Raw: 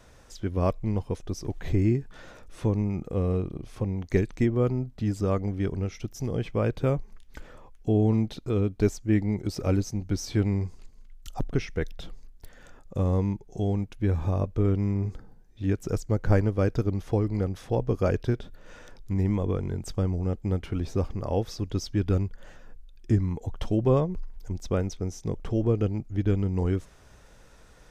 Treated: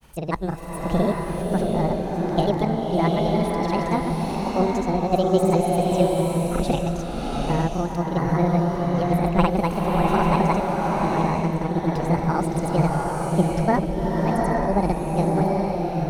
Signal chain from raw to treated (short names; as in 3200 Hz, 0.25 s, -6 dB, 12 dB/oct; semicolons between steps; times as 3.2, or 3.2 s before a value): speed mistake 45 rpm record played at 78 rpm; grains, pitch spread up and down by 0 st; bloom reverb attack 0.82 s, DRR -2 dB; gain +3 dB